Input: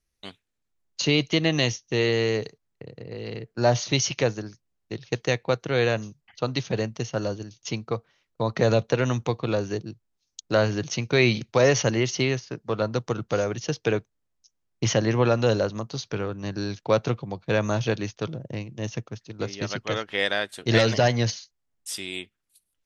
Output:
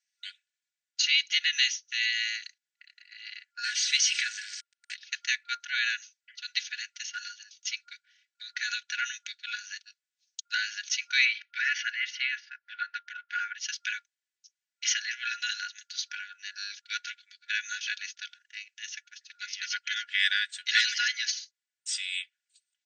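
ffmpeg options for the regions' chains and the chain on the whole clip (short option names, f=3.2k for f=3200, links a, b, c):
-filter_complex "[0:a]asettb=1/sr,asplit=3[a][b][c];[a]atrim=end=3.644[d];[b]atrim=start=3.64:end=4.94,asetpts=PTS-STARTPTS,afade=t=in:d=0.004:c=qsin,afade=t=out:st=1.296:d=0.004:c=qsin,aeval=exprs='val(0)+0.5*0.0398*sgn(val(0))':c=same,equalizer=f=7.2k:t=o:w=0.49:g=-5[e];[c]atrim=start=4.936[f];[d][e]acrossfade=d=0.004:c1=hsin:c2=qsin[g];[g][f]acrossfade=d=0.004:c1=qsin:c2=hsin,asettb=1/sr,asplit=3[h][i][j];[h]atrim=end=11.254[k];[i]atrim=start=11.25:end=13.6,asetpts=PTS-STARTPTS,afade=t=in:d=0.004:c=qsin,afade=t=out:st=2.346:d=0.004:c=qsin,lowpass=1.9k,acontrast=21[l];[j]atrim=start=13.596[m];[k][l]acrossfade=d=0.004:c1=hsin:c2=qsin[n];[n][m]acrossfade=d=0.004:c1=qsin:c2=hsin,afftfilt=real='re*between(b*sr/4096,1400,8800)':imag='im*between(b*sr/4096,1400,8800)':win_size=4096:overlap=0.75,aecho=1:1:3.5:0.76"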